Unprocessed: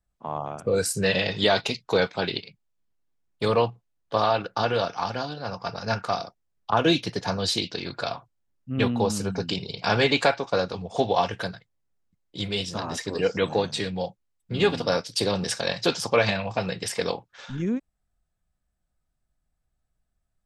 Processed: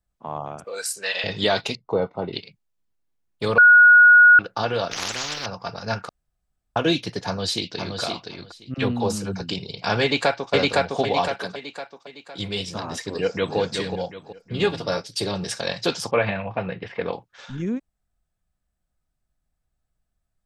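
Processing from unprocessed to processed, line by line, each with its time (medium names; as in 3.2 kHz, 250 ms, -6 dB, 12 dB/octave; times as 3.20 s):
0.64–1.24 s: high-pass 860 Hz
1.75–2.33 s: Savitzky-Golay filter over 65 samples
3.58–4.39 s: bleep 1.45 kHz -7.5 dBFS
4.91–5.46 s: spectrum-flattening compressor 10:1
6.09–6.76 s: room tone
7.26–7.99 s: echo throw 520 ms, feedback 15%, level -5 dB
8.74–9.41 s: phase dispersion lows, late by 41 ms, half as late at 470 Hz
10.02–10.53 s: echo throw 510 ms, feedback 45%, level 0 dB
11.28–12.39 s: high-pass 190 Hz
13.11–13.58 s: echo throw 370 ms, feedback 35%, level -6 dB
14.66–15.56 s: comb of notches 250 Hz
16.11–17.13 s: low-pass 2.7 kHz 24 dB/octave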